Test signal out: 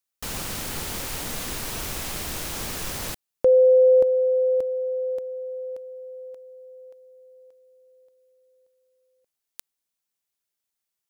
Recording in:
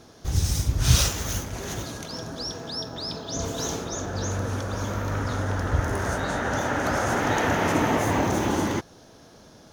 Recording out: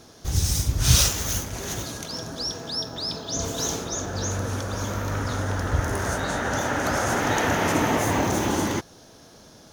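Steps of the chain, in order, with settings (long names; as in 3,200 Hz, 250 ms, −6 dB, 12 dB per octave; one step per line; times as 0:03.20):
high-shelf EQ 3,900 Hz +6 dB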